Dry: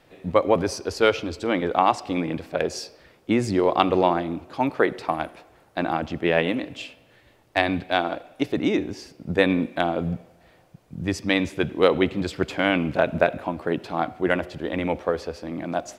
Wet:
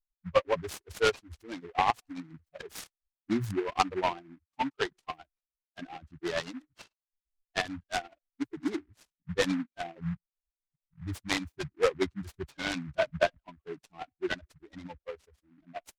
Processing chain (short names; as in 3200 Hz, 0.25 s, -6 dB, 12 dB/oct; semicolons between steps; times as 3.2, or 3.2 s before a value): per-bin expansion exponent 3; high shelf 7200 Hz -10 dB; 15.15–15.58 compressor, threshold -58 dBFS, peak gain reduction 6.5 dB; dynamic EQ 240 Hz, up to -4 dB, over -40 dBFS, Q 0.8; noise-modulated delay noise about 1400 Hz, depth 0.074 ms